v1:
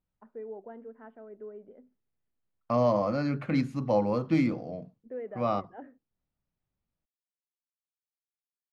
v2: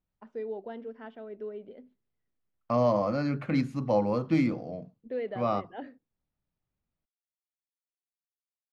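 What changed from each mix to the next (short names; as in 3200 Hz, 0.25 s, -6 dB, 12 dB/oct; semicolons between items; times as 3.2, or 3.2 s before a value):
first voice: remove ladder low-pass 2000 Hz, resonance 20%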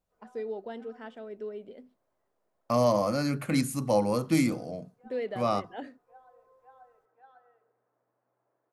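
background: unmuted; master: remove air absorption 240 m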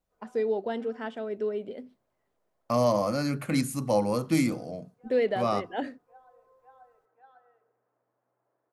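first voice +8.0 dB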